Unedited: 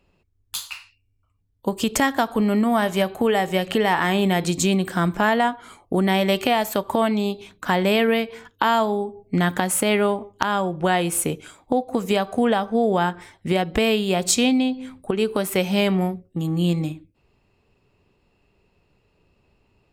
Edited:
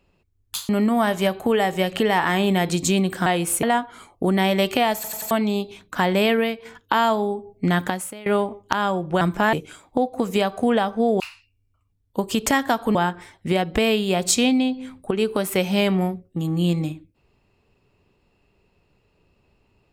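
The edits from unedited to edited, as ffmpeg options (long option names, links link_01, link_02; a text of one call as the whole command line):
ffmpeg -i in.wav -filter_complex "[0:a]asplit=14[link_01][link_02][link_03][link_04][link_05][link_06][link_07][link_08][link_09][link_10][link_11][link_12][link_13][link_14];[link_01]atrim=end=0.692[link_15];[link_02]atrim=start=2.438:end=5.012[link_16];[link_03]atrim=start=10.908:end=11.282[link_17];[link_04]atrim=start=5.328:end=6.742[link_18];[link_05]atrim=start=6.648:end=6.742[link_19];[link_06]atrim=start=6.648:end=6.742[link_20];[link_07]atrim=start=6.648:end=6.742[link_21];[link_08]atrim=start=7.008:end=8.35,asetpts=PTS-STARTPTS,afade=type=out:start_time=0.992:duration=0.35:silence=0.501187[link_22];[link_09]atrim=start=8.35:end=9.96,asetpts=PTS-STARTPTS,afade=type=in:duration=0.004:curve=hsin:silence=0.501187,afade=type=out:start_time=1.2:duration=0.41:curve=qua:silence=0.0841395[link_23];[link_10]atrim=start=9.96:end=10.912,asetpts=PTS-STARTPTS,afade=type=in:duration=0.004:curve=hsin:silence=0.0841395[link_24];[link_11]atrim=start=5.008:end=5.332[link_25];[link_12]atrim=start=11.278:end=12.952[link_26];[link_13]atrim=start=0.688:end=2.442[link_27];[link_14]atrim=start=12.948[link_28];[link_15][link_16]acrossfade=duration=0.004:curve1=hsin:curve2=hsin[link_29];[link_29][link_17]acrossfade=duration=0.004:curve1=hsin:curve2=hsin[link_30];[link_30][link_18]acrossfade=duration=0.004:curve1=hsin:curve2=hsin[link_31];[link_31][link_19]acrossfade=duration=0.004:curve1=hsin:curve2=hsin[link_32];[link_32][link_20]acrossfade=duration=0.004:curve1=hsin:curve2=hsin[link_33];[link_33][link_21]acrossfade=duration=0.004:curve1=hsin:curve2=hsin[link_34];[link_22][link_23][link_24]concat=n=3:v=0:a=1[link_35];[link_34][link_35]acrossfade=duration=0.004:curve1=hsin:curve2=hsin[link_36];[link_36][link_25]acrossfade=duration=0.004:curve1=hsin:curve2=hsin[link_37];[link_37][link_26]acrossfade=duration=0.004:curve1=hsin:curve2=hsin[link_38];[link_38][link_27]acrossfade=duration=0.004:curve1=hsin:curve2=hsin[link_39];[link_39][link_28]acrossfade=duration=0.004:curve1=hsin:curve2=hsin" out.wav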